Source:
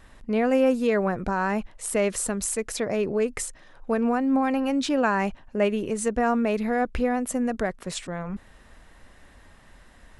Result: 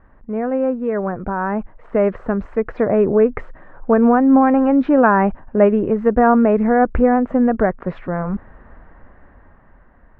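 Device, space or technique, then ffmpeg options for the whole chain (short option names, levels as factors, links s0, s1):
action camera in a waterproof case: -af "lowpass=f=1600:w=0.5412,lowpass=f=1600:w=1.3066,dynaudnorm=f=420:g=9:m=3.98,volume=1.12" -ar 32000 -c:a aac -b:a 64k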